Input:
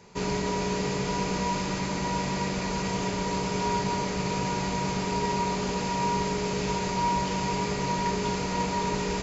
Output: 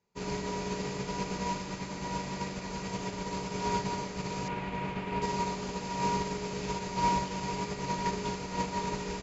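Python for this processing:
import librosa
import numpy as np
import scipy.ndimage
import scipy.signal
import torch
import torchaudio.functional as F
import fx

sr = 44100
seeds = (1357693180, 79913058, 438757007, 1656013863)

y = fx.high_shelf_res(x, sr, hz=3900.0, db=-12.5, q=1.5, at=(4.48, 5.22))
y = fx.upward_expand(y, sr, threshold_db=-42.0, expansion=2.5)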